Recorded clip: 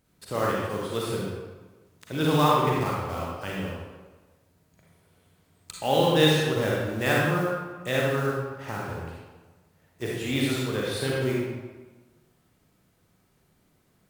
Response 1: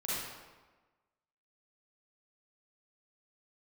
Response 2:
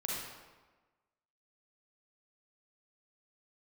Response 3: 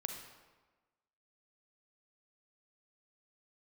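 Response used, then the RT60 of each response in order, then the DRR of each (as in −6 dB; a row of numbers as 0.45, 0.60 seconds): 2; 1.3, 1.3, 1.3 seconds; −9.0, −4.5, 4.0 decibels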